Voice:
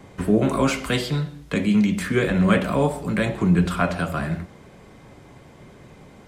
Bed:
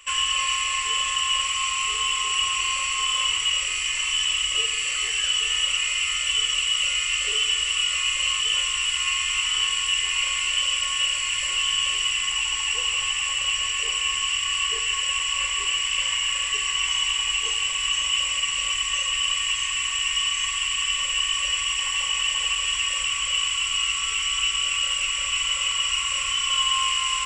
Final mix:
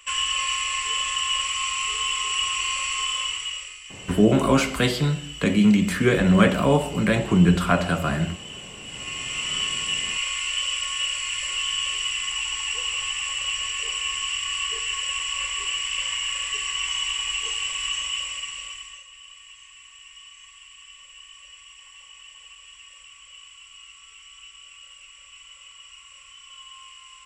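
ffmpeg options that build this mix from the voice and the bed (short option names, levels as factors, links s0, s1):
-filter_complex "[0:a]adelay=3900,volume=1.19[s0];[1:a]volume=3.98,afade=t=out:st=2.97:d=0.82:silence=0.177828,afade=t=in:st=8.83:d=0.74:silence=0.211349,afade=t=out:st=17.85:d=1.2:silence=0.112202[s1];[s0][s1]amix=inputs=2:normalize=0"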